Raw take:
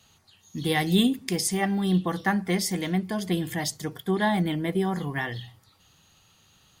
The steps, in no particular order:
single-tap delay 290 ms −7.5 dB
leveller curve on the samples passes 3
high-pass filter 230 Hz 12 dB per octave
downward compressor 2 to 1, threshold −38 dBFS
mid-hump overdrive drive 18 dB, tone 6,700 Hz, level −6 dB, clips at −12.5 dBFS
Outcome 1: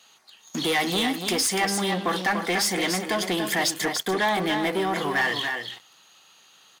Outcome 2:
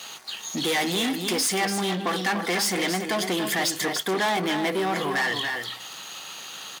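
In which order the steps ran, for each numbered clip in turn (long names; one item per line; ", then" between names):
leveller curve on the samples, then high-pass filter, then downward compressor, then single-tap delay, then mid-hump overdrive
mid-hump overdrive, then downward compressor, then single-tap delay, then leveller curve on the samples, then high-pass filter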